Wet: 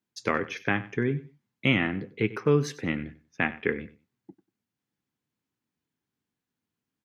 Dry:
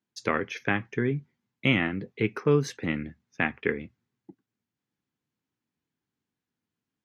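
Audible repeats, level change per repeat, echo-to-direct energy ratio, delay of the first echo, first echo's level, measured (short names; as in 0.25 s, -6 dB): 2, -14.0 dB, -17.0 dB, 95 ms, -17.0 dB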